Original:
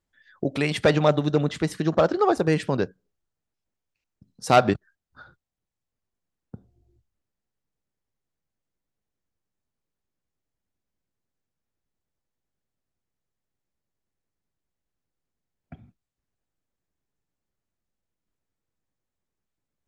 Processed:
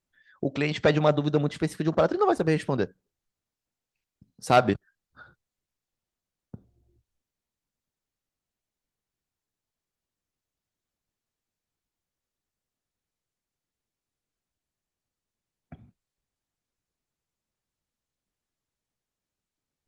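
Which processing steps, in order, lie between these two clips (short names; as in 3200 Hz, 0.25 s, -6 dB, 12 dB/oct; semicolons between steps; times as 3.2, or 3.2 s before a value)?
gain -2 dB; Opus 24 kbps 48000 Hz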